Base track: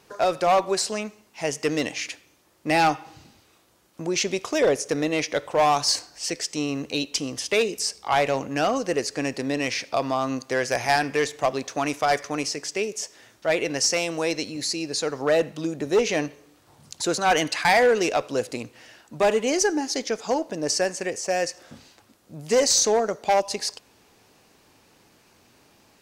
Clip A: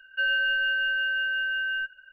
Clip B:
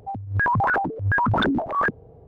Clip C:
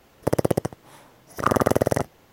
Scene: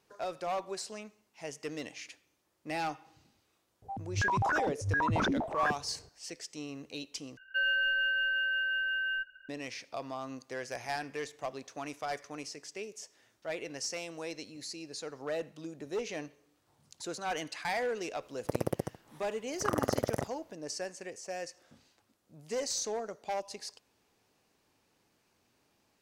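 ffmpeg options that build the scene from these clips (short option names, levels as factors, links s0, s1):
-filter_complex "[0:a]volume=0.178[s0];[1:a]acontrast=32[s1];[s0]asplit=2[s2][s3];[s2]atrim=end=7.374[s4];[s1]atrim=end=2.12,asetpts=PTS-STARTPTS,volume=0.335[s5];[s3]atrim=start=9.486[s6];[2:a]atrim=end=2.27,asetpts=PTS-STARTPTS,volume=0.355,afade=t=in:d=0.004:c=hsin,afade=t=out:st=2.266:d=0.004:c=hsin,adelay=3820[s7];[3:a]atrim=end=2.32,asetpts=PTS-STARTPTS,volume=0.266,afade=t=in:d=0.004:c=hsin,afade=t=out:st=2.316:d=0.004:c=hsin,adelay=18220[s8];[s4][s5]acrossfade=d=0.004:c1=hsin:c2=hsin[s9];[s9][s6]acrossfade=d=0.004:c1=hsin:c2=hsin[s10];[s10][s7][s8]amix=inputs=3:normalize=0"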